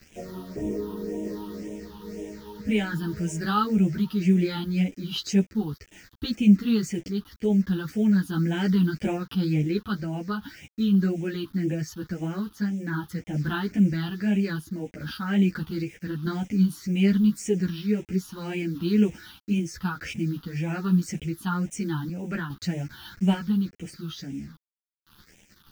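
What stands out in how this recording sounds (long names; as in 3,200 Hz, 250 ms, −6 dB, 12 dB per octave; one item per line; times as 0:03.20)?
a quantiser's noise floor 8 bits, dither none
phaser sweep stages 6, 1.9 Hz, lowest notch 570–1,200 Hz
sample-and-hold tremolo 2.4 Hz
a shimmering, thickened sound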